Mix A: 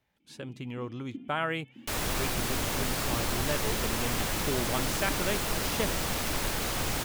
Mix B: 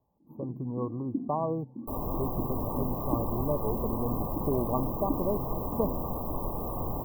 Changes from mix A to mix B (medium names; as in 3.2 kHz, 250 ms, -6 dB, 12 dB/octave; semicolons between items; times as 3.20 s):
speech +3.5 dB; first sound +9.5 dB; master: add brick-wall FIR band-stop 1.2–14 kHz